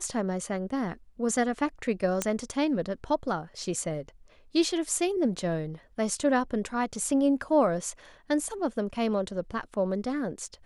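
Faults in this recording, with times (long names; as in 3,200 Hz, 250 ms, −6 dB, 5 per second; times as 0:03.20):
0:02.22: click −11 dBFS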